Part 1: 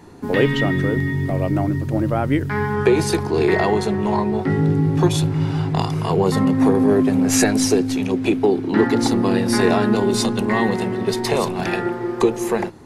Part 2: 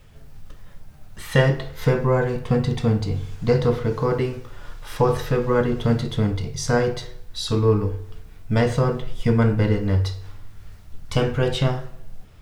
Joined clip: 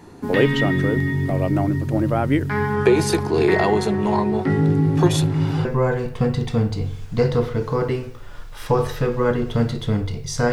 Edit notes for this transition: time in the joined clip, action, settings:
part 1
0:05.05: mix in part 2 from 0:01.35 0.60 s −17.5 dB
0:05.65: continue with part 2 from 0:01.95

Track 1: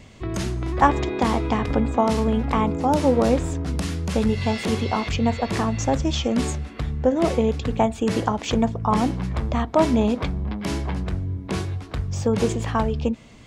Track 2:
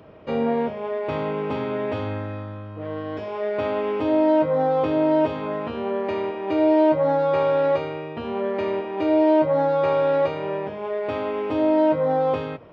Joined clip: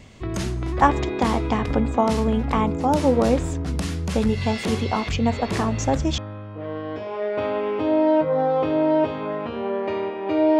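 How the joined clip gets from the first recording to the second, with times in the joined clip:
track 1
0:05.33: mix in track 2 from 0:01.54 0.85 s −10.5 dB
0:06.18: continue with track 2 from 0:02.39

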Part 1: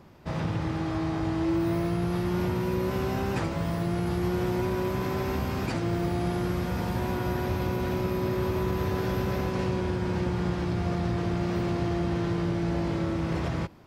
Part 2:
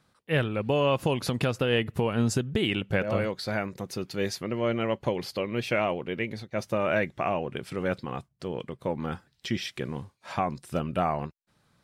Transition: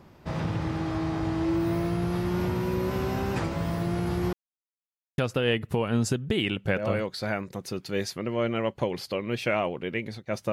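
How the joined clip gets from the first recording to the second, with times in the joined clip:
part 1
0:04.33–0:05.18: silence
0:05.18: continue with part 2 from 0:01.43

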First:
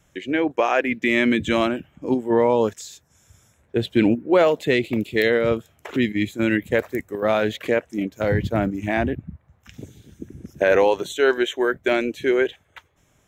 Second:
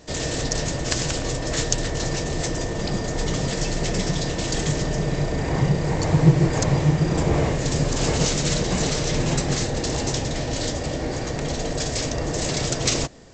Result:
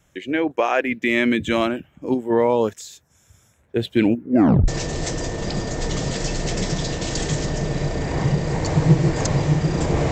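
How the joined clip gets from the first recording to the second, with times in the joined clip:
first
0:04.21: tape stop 0.47 s
0:04.68: continue with second from 0:02.05

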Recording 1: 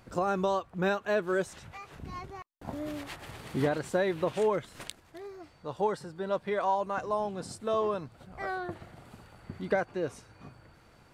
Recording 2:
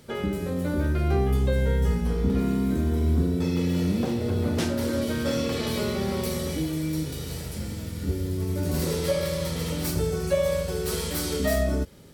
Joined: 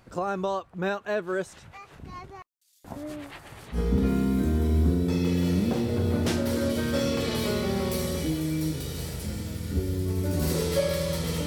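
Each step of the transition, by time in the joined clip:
recording 1
0:02.47–0:03.79: multiband delay without the direct sound highs, lows 230 ms, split 4,400 Hz
0:03.75: continue with recording 2 from 0:02.07, crossfade 0.08 s

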